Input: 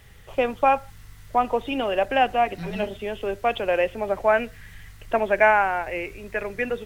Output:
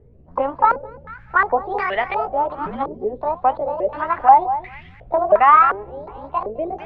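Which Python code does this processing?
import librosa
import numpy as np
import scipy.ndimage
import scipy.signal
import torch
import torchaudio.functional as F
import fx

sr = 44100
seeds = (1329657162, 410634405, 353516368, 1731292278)

p1 = fx.pitch_ramps(x, sr, semitones=11.0, every_ms=380)
p2 = fx.echo_feedback(p1, sr, ms=212, feedback_pct=22, wet_db=-13.0)
p3 = np.clip(p2, -10.0 ** (-16.0 / 20.0), 10.0 ** (-16.0 / 20.0))
p4 = p2 + F.gain(torch.from_numpy(p3), -6.5).numpy()
p5 = fx.filter_held_lowpass(p4, sr, hz=2.8, low_hz=420.0, high_hz=2000.0)
y = F.gain(torch.from_numpy(p5), -3.0).numpy()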